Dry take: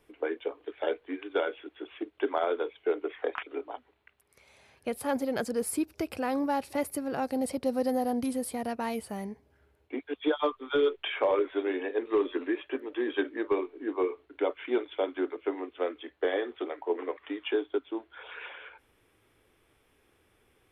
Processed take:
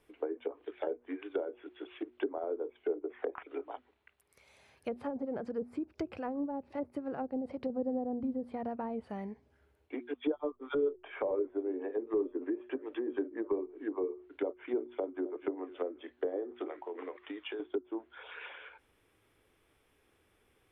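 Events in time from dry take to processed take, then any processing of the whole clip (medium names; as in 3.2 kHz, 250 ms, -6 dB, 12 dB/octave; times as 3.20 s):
5.07–7.70 s: tremolo 7.4 Hz, depth 43%
14.91–15.36 s: echo throw 250 ms, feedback 45%, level -16 dB
16.66–17.60 s: compression, threshold -33 dBFS
whole clip: de-hum 120.7 Hz, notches 3; low-pass that closes with the level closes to 510 Hz, closed at -27 dBFS; trim -3.5 dB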